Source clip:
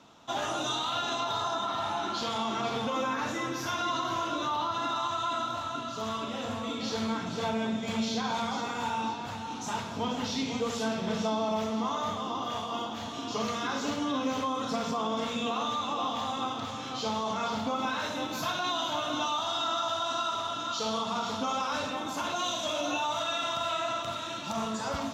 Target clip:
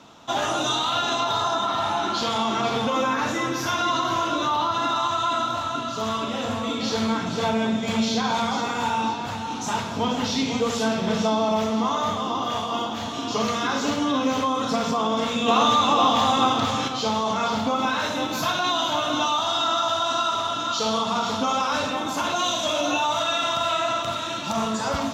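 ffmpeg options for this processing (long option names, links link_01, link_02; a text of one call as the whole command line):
ffmpeg -i in.wav -filter_complex "[0:a]asettb=1/sr,asplit=3[link_01][link_02][link_03];[link_01]atrim=end=15.484[link_04];[link_02]atrim=start=15.48:end=16.88,asetpts=PTS-STARTPTS,afade=type=in:duration=0.004:curve=qsin,afade=type=out:start_time=1.396:duration=0.004:curve=qsin,acontrast=36[link_05];[link_03]atrim=start=16.876[link_06];[link_04][link_05]acrossfade=duration=0.004:curve1=hsin:curve2=qsin[link_07];[link_07][link_06]acrossfade=duration=0.004:curve1=qsin:curve2=hsin,volume=7.5dB" out.wav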